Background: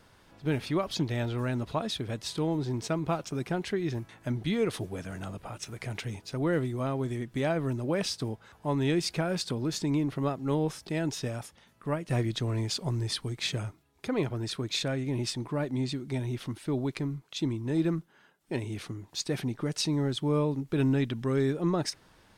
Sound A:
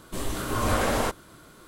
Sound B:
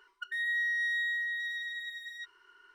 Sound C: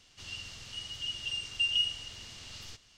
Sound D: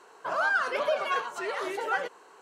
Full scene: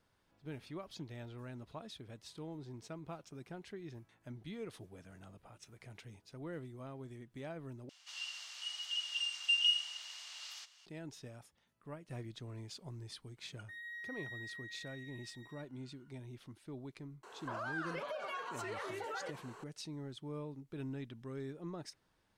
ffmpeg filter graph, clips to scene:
ffmpeg -i bed.wav -i cue0.wav -i cue1.wav -i cue2.wav -i cue3.wav -filter_complex "[0:a]volume=-17dB[link_01];[3:a]highpass=frequency=790:width=0.5412,highpass=frequency=790:width=1.3066[link_02];[2:a]equalizer=frequency=3600:width=0.35:gain=-5.5[link_03];[4:a]acompressor=threshold=-39dB:ratio=6:attack=3.2:release=140:knee=1:detection=peak[link_04];[link_01]asplit=2[link_05][link_06];[link_05]atrim=end=7.894[link_07];[link_02]atrim=end=2.97,asetpts=PTS-STARTPTS,volume=-1.5dB[link_08];[link_06]atrim=start=10.856[link_09];[link_03]atrim=end=2.74,asetpts=PTS-STARTPTS,volume=-11.5dB,afade=type=in:duration=0.004:curve=hsin,afade=type=out:start_time=2.736:duration=0.004:curve=hsin,adelay=13370[link_10];[link_04]atrim=end=2.41,asetpts=PTS-STARTPTS,volume=-0.5dB,afade=type=in:duration=0.004:curve=hsin,afade=type=out:start_time=2.406:duration=0.004:curve=hsin,adelay=17230[link_11];[link_07][link_08]acrossfade=duration=0.004:curve1=hsin:curve2=hsin[link_12];[link_12][link_09]acrossfade=duration=0.004:curve1=hsin:curve2=hsin[link_13];[link_13][link_10][link_11]amix=inputs=3:normalize=0" out.wav

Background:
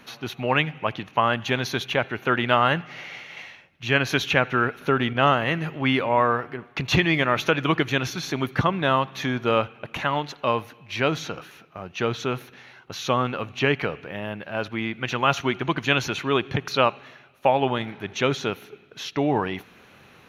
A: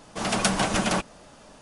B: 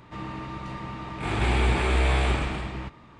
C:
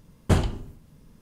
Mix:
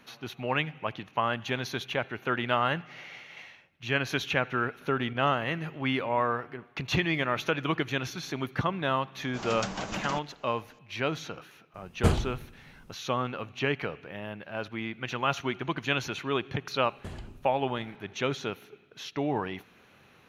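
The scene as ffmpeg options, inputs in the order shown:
ffmpeg -i bed.wav -i cue0.wav -i cue1.wav -i cue2.wav -filter_complex "[3:a]asplit=2[link_01][link_02];[0:a]volume=-7dB[link_03];[1:a]aresample=16000,aresample=44100[link_04];[link_02]acompressor=threshold=-25dB:ratio=6:attack=3.2:release=140:knee=1:detection=peak[link_05];[link_04]atrim=end=1.61,asetpts=PTS-STARTPTS,volume=-11dB,afade=type=in:duration=0.004:curve=hsin,afade=type=out:start_time=1.606:duration=0.004:curve=hsin,adelay=9180[link_06];[link_01]atrim=end=1.21,asetpts=PTS-STARTPTS,volume=-3dB,afade=type=in:duration=0.004:curve=hsin,afade=type=out:start_time=1.206:duration=0.004:curve=hsin,adelay=11740[link_07];[link_05]atrim=end=1.21,asetpts=PTS-STARTPTS,volume=-11dB,afade=type=in:duration=0.004:curve=hsin,afade=type=out:start_time=1.206:duration=0.004:curve=hsin,adelay=16750[link_08];[link_03][link_06][link_07][link_08]amix=inputs=4:normalize=0" out.wav

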